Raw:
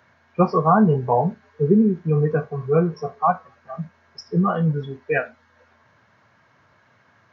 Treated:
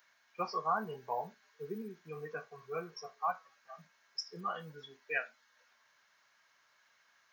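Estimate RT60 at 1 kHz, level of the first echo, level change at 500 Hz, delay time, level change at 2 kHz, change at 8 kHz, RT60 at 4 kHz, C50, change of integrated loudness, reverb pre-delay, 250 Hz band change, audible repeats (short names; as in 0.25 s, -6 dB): none, none, -20.5 dB, none, -10.0 dB, n/a, none, none, -19.0 dB, none, -28.5 dB, none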